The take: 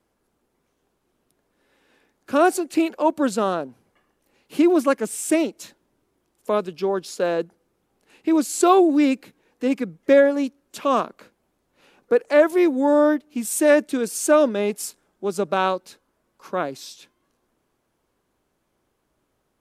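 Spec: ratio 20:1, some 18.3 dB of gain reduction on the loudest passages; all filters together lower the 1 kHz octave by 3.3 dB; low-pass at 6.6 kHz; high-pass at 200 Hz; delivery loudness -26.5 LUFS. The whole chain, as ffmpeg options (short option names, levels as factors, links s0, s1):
-af "highpass=200,lowpass=6600,equalizer=f=1000:t=o:g=-4.5,acompressor=threshold=0.0316:ratio=20,volume=2.99"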